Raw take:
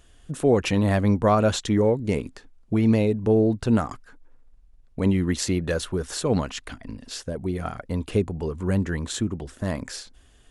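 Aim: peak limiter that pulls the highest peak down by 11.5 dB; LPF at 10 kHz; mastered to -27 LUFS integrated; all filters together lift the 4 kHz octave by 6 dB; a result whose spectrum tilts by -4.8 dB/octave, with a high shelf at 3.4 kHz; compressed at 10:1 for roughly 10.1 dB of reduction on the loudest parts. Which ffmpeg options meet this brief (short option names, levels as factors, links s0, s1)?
-af "lowpass=10000,highshelf=f=3400:g=5.5,equalizer=f=4000:t=o:g=3.5,acompressor=threshold=0.0562:ratio=10,volume=1.88,alimiter=limit=0.15:level=0:latency=1"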